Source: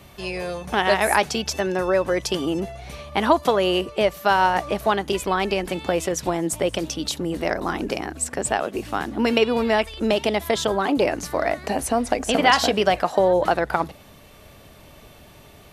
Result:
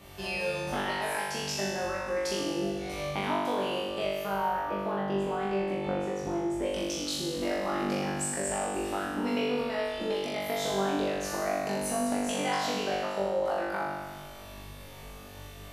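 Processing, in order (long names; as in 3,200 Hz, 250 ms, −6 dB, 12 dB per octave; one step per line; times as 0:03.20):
0:04.25–0:06.63: low-pass filter 1,100 Hz 6 dB per octave
downward compressor, threshold −28 dBFS, peak gain reduction 16 dB
flutter between parallel walls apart 3.5 metres, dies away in 1.4 s
level −6 dB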